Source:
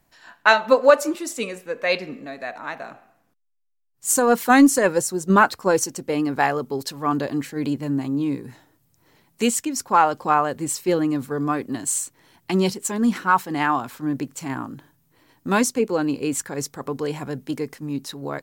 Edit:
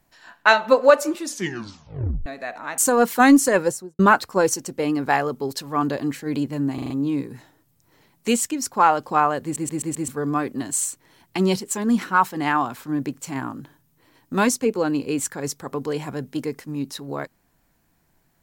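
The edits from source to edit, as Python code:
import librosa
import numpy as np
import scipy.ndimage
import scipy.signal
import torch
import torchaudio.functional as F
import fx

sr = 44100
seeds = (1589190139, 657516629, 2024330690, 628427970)

y = fx.studio_fade_out(x, sr, start_s=4.92, length_s=0.37)
y = fx.edit(y, sr, fx.tape_stop(start_s=1.2, length_s=1.06),
    fx.cut(start_s=2.78, length_s=1.3),
    fx.stutter(start_s=8.04, slice_s=0.04, count=5),
    fx.stutter_over(start_s=10.57, slice_s=0.13, count=5), tone=tone)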